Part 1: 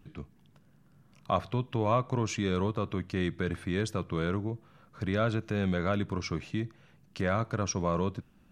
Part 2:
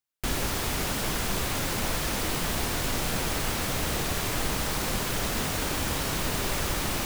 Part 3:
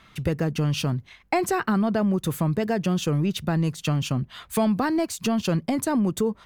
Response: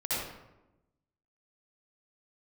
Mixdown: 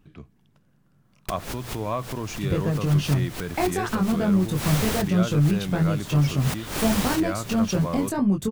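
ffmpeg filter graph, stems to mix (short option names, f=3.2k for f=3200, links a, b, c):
-filter_complex "[0:a]volume=-1dB,asplit=2[a][b];[1:a]adelay=1050,volume=2dB[c];[2:a]lowshelf=f=170:g=10.5,flanger=delay=20:depth=2.2:speed=2.5,adelay=2250,volume=-0.5dB[d];[b]apad=whole_len=357492[e];[c][e]sidechaincompress=threshold=-45dB:ratio=10:attack=7.1:release=112[f];[a][f][d]amix=inputs=3:normalize=0,bandreject=f=60:t=h:w=6,bandreject=f=120:t=h:w=6"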